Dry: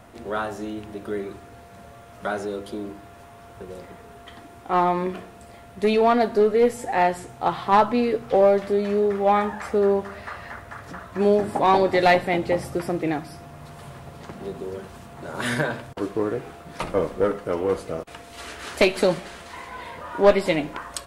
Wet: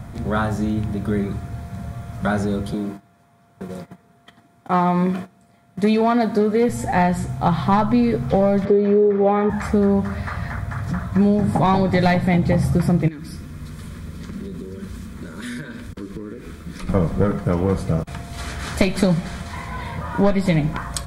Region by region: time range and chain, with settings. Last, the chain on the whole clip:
2.73–6.69 gate -41 dBFS, range -16 dB + HPF 210 Hz
8.65–9.5 BPF 210–3300 Hz + bell 440 Hz +14.5 dB 0.51 oct
13.08–16.89 compressor 4:1, threshold -34 dBFS + fixed phaser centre 310 Hz, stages 4
whole clip: resonant low shelf 240 Hz +12.5 dB, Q 1.5; notch 2800 Hz, Q 6.5; compressor, threshold -18 dBFS; gain +5 dB

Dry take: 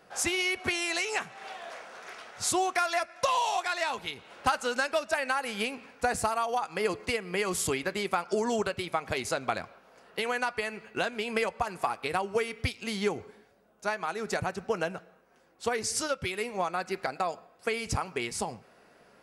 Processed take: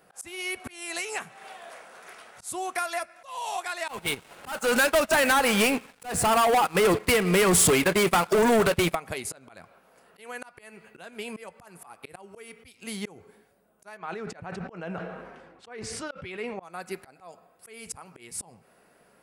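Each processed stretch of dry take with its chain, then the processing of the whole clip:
3.88–8.95 air absorption 67 m + sample leveller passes 5 + gate -26 dBFS, range -12 dB
13.97–16.63 LPF 3100 Hz + sustainer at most 36 dB/s
whole clip: bell 170 Hz +3.5 dB 0.24 oct; auto swell 0.289 s; resonant high shelf 7500 Hz +7.5 dB, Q 1.5; gain -2 dB

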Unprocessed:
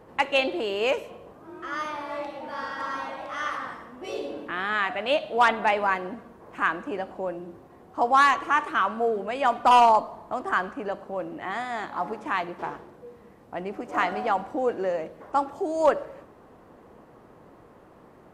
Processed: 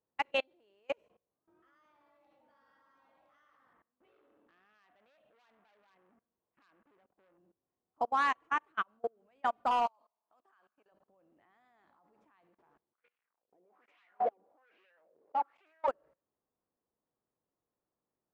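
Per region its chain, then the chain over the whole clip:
3.73–7.38 LPF 3100 Hz 24 dB/oct + compressor 1.5:1, threshold -31 dBFS + core saturation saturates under 3000 Hz
9.86–10.92 HPF 1300 Hz 6 dB/oct + bell 2000 Hz -6 dB 0.25 oct
12.93–15.88 sample leveller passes 5 + wah 1.2 Hz 400–2700 Hz, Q 3.8
whole clip: high shelf 7500 Hz -11 dB; level quantiser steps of 22 dB; upward expander 2.5:1, over -35 dBFS; gain -5 dB

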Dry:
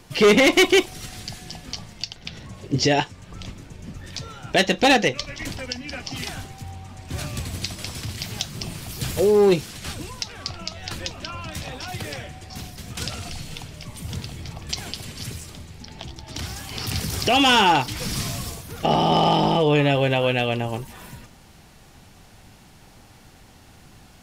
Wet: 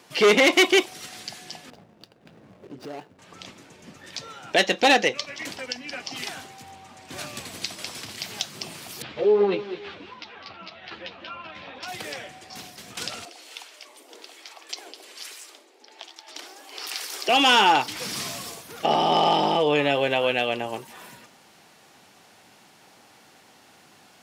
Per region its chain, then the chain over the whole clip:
1.7–3.19 median filter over 41 samples + high shelf 6800 Hz -4.5 dB + compressor 5:1, threshold -31 dBFS
9.02–11.83 LPF 3600 Hz 24 dB/oct + feedback echo 0.205 s, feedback 22%, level -11 dB + ensemble effect
13.25–17.29 steep high-pass 300 Hz 48 dB/oct + harmonic tremolo 1.2 Hz, crossover 770 Hz
whole clip: Bessel high-pass 370 Hz, order 2; high shelf 7200 Hz -4 dB

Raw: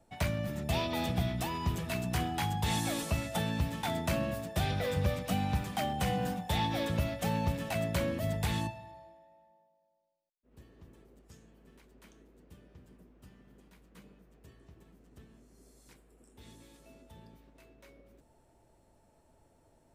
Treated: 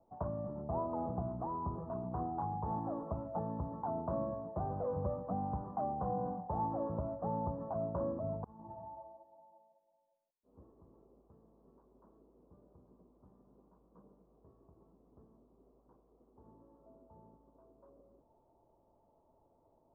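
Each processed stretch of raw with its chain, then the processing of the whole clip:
8.44–10.72 negative-ratio compressor -39 dBFS, ratio -0.5 + ensemble effect
whole clip: elliptic low-pass 1100 Hz, stop band 50 dB; low shelf 270 Hz -9.5 dB

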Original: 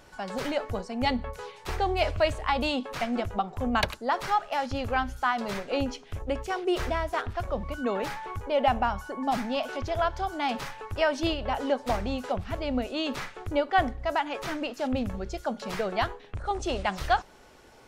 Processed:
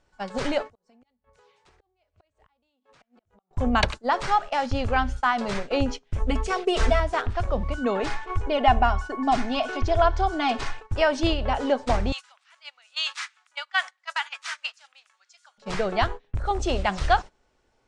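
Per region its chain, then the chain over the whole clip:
0.62–3.51 flipped gate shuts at -20 dBFS, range -31 dB + compressor 12:1, threshold -38 dBFS + HPF 150 Hz 6 dB/oct
6.18–7 high shelf 8100 Hz +4 dB + comb 4.5 ms, depth 89%
8–10.82 high shelf 11000 Hz -8 dB + comb 2.8 ms, depth 60%
12.12–15.58 HPF 1100 Hz 24 dB/oct + tilt +2.5 dB/oct
whole clip: steep low-pass 9200 Hz 48 dB/oct; low shelf 61 Hz +9 dB; gate -34 dBFS, range -19 dB; gain +3.5 dB

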